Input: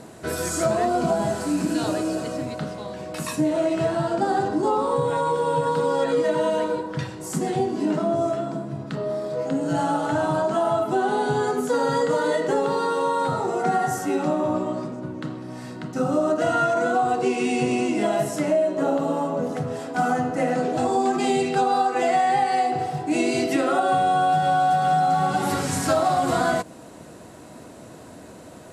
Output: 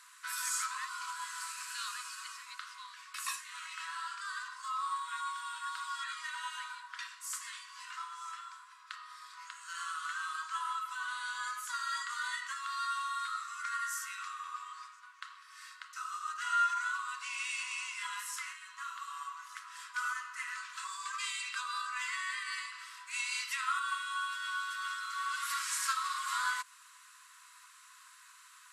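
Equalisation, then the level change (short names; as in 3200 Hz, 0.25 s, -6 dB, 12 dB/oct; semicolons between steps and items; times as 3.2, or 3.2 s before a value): brick-wall FIR high-pass 980 Hz; -5.0 dB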